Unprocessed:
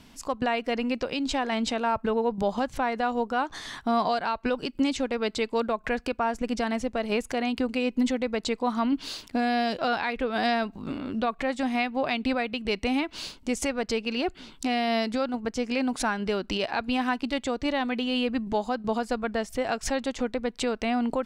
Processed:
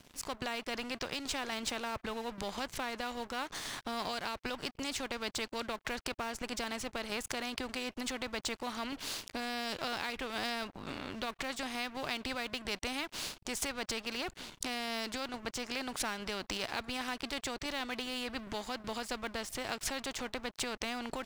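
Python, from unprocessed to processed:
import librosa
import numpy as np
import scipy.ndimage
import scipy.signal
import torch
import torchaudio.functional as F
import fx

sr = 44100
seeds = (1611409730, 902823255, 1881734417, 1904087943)

y = np.sign(x) * np.maximum(np.abs(x) - 10.0 ** (-50.0 / 20.0), 0.0)
y = fx.spectral_comp(y, sr, ratio=2.0)
y = y * librosa.db_to_amplitude(2.0)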